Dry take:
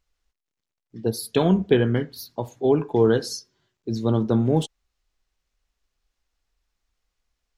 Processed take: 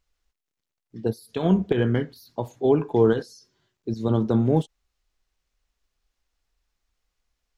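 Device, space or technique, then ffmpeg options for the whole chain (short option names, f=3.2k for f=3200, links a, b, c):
de-esser from a sidechain: -filter_complex "[0:a]asplit=2[a][b];[b]highpass=f=4.3k:w=0.5412,highpass=f=4.3k:w=1.3066,apad=whole_len=333959[c];[a][c]sidechaincompress=threshold=-50dB:ratio=4:attack=1.7:release=33"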